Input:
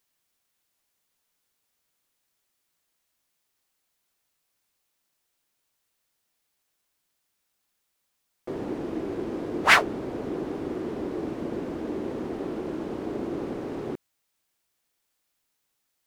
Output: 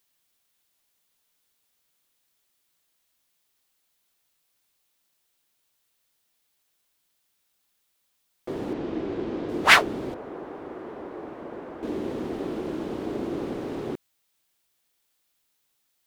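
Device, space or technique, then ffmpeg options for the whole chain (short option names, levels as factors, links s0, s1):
presence and air boost: -filter_complex "[0:a]equalizer=f=3500:t=o:w=0.77:g=3.5,highshelf=f=9600:g=4.5,asettb=1/sr,asplit=3[s0][s1][s2];[s0]atrim=end=8.734[s3];[s1]atrim=start=8.73:end=9.49,asetpts=PTS-STARTPTS,afade=t=in:d=0.004:c=qsin,afade=t=out:st=0.756:d=0.004:c=qsin,lowpass=4700[s4];[s2]atrim=start=9.486[s5];[s3][s4]acrossfade=d=0.004:c1=hsin:c2=qsin[s6];[s6][s5]acrossfade=d=0.004:c1=qsin:c2=hsin,asettb=1/sr,asplit=3[s7][s8][s9];[s7]atrim=end=10.144[s10];[s8]atrim=start=10.14:end=11.83,asetpts=PTS-STARTPTS,afade=t=in:d=0.004:c=qsin,afade=t=out:st=1.686:d=0.004:c=qsin,acrossover=split=520 2000:gain=0.251 1 0.158[s11][s12][s13];[s11][s12][s13]amix=inputs=3:normalize=0[s14];[s9]atrim=start=11.826[s15];[s10][s14]acrossfade=d=0.004:c1=hsin:c2=qsin[s16];[s16][s15]acrossfade=d=0.004:c1=qsin:c2=hsin,volume=1.12"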